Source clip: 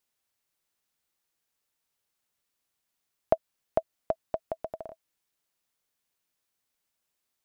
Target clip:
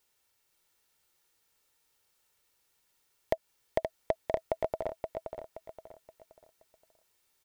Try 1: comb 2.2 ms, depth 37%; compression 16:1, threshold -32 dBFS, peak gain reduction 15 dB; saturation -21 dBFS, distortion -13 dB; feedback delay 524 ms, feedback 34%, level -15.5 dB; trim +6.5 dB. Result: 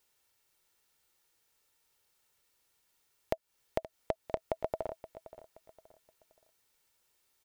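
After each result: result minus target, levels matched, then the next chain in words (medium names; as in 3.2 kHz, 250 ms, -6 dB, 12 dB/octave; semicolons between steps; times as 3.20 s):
echo-to-direct -9.5 dB; compression: peak gain reduction +6 dB
comb 2.2 ms, depth 37%; compression 16:1, threshold -32 dBFS, peak gain reduction 15 dB; saturation -21 dBFS, distortion -13 dB; feedback delay 524 ms, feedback 34%, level -6 dB; trim +6.5 dB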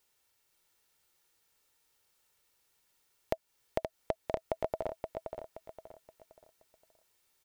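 compression: peak gain reduction +6 dB
comb 2.2 ms, depth 37%; compression 16:1, threshold -25.5 dBFS, peak gain reduction 8.5 dB; saturation -21 dBFS, distortion -9 dB; feedback delay 524 ms, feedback 34%, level -6 dB; trim +6.5 dB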